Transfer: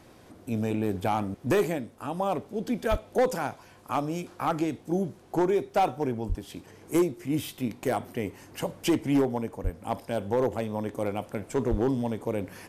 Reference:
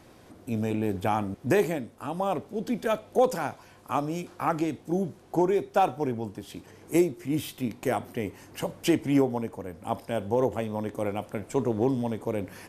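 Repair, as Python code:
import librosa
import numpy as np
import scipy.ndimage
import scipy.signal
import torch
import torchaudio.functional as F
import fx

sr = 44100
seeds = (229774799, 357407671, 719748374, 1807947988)

y = fx.fix_declip(x, sr, threshold_db=-17.5)
y = fx.fix_deplosive(y, sr, at_s=(2.9, 6.28, 9.63, 11.7))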